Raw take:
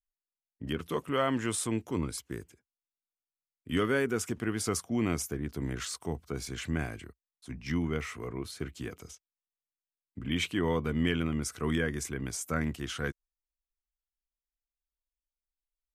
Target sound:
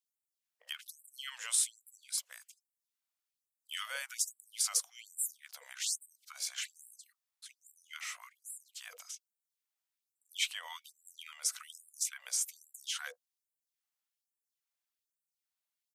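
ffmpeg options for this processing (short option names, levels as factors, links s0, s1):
-filter_complex "[0:a]acrossover=split=120|3000[s0][s1][s2];[s1]acompressor=threshold=0.002:ratio=2[s3];[s0][s3][s2]amix=inputs=3:normalize=0,aeval=exprs='0.1*(cos(1*acos(clip(val(0)/0.1,-1,1)))-cos(1*PI/2))+0.00141*(cos(2*acos(clip(val(0)/0.1,-1,1)))-cos(2*PI/2))':c=same,acrossover=split=540[s4][s5];[s4]adelay=50[s6];[s6][s5]amix=inputs=2:normalize=0,afftfilt=real='re*gte(b*sr/1024,470*pow(7400/470,0.5+0.5*sin(2*PI*1.2*pts/sr)))':imag='im*gte(b*sr/1024,470*pow(7400/470,0.5+0.5*sin(2*PI*1.2*pts/sr)))':win_size=1024:overlap=0.75,volume=1.78"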